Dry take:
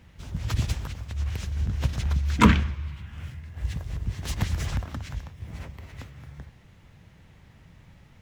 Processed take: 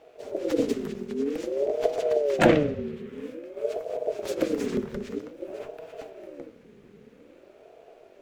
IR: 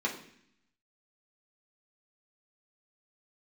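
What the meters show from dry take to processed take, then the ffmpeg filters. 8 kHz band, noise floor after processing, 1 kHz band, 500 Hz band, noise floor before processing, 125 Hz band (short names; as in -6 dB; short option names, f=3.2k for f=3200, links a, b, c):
-4.0 dB, -54 dBFS, -2.5 dB, +16.0 dB, -54 dBFS, -12.0 dB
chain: -filter_complex "[0:a]asplit=2[a][b];[b]equalizer=f=89:w=0.31:g=11[c];[1:a]atrim=start_sample=2205[d];[c][d]afir=irnorm=-1:irlink=0,volume=-16.5dB[e];[a][e]amix=inputs=2:normalize=0,aeval=exprs='val(0)*sin(2*PI*430*n/s+430*0.3/0.51*sin(2*PI*0.51*n/s))':c=same"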